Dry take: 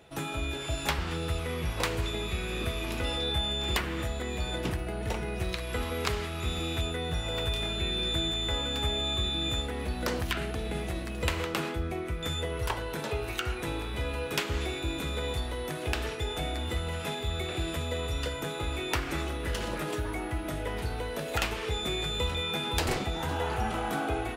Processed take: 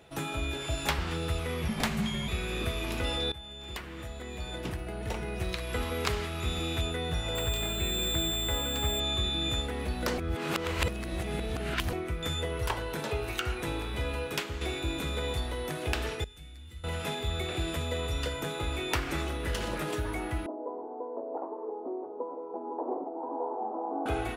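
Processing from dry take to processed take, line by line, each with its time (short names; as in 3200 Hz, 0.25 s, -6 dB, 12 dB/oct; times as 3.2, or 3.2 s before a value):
1.68–2.28 frequency shift -270 Hz
3.32–5.75 fade in, from -17 dB
7.35–9 careless resampling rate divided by 4×, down filtered, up hold
10.18–11.93 reverse
14.17–14.61 fade out, to -7.5 dB
16.24–16.84 passive tone stack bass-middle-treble 6-0-2
20.46–24.06 Chebyshev band-pass 260–1000 Hz, order 4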